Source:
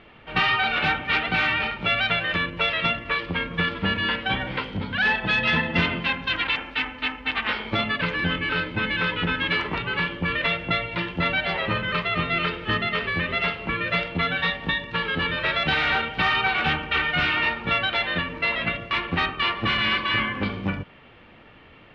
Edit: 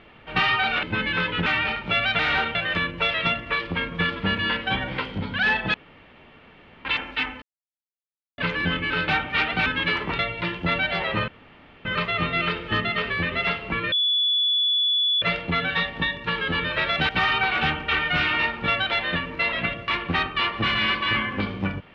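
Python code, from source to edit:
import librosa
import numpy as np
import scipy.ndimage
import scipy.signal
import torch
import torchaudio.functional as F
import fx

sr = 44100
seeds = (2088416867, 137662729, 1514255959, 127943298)

y = fx.edit(x, sr, fx.swap(start_s=0.83, length_s=0.58, other_s=8.67, other_length_s=0.63),
    fx.room_tone_fill(start_s=5.33, length_s=1.11),
    fx.silence(start_s=7.01, length_s=0.96),
    fx.cut(start_s=9.83, length_s=0.9),
    fx.insert_room_tone(at_s=11.82, length_s=0.57),
    fx.insert_tone(at_s=13.89, length_s=1.3, hz=3430.0, db=-18.5),
    fx.move(start_s=15.76, length_s=0.36, to_s=2.14), tone=tone)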